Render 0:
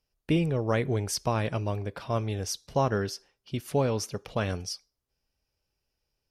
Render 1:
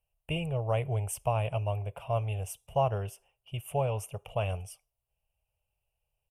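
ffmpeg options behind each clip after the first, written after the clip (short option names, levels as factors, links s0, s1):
-af "firequalizer=gain_entry='entry(120,0);entry(260,-23);entry(420,-9);entry(660,3);entry(1700,-17);entry(2800,4);entry(4100,-30);entry(8400,0)':delay=0.05:min_phase=1"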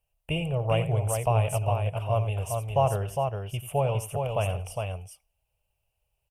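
-af "aecho=1:1:88|408:0.224|0.596,volume=1.5"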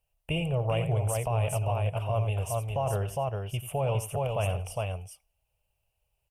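-af "alimiter=limit=0.1:level=0:latency=1:release=12"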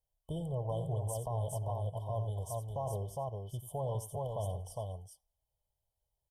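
-af "afftfilt=real='re*(1-between(b*sr/4096,1100,3000))':imag='im*(1-between(b*sr/4096,1100,3000))':win_size=4096:overlap=0.75,volume=0.398"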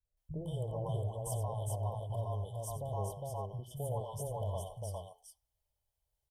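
-filter_complex "[0:a]acrossover=split=160|640[s0][s1][s2];[s1]adelay=50[s3];[s2]adelay=170[s4];[s0][s3][s4]amix=inputs=3:normalize=0,volume=1.12"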